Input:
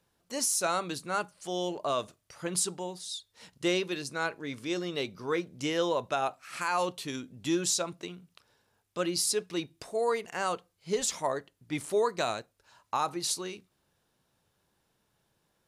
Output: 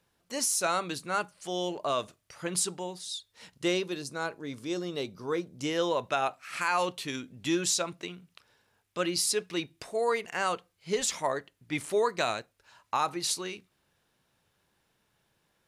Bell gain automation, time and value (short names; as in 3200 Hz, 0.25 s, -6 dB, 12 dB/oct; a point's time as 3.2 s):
bell 2200 Hz 1.4 oct
3.54 s +3 dB
3.96 s -5.5 dB
5.48 s -5.5 dB
6.02 s +5 dB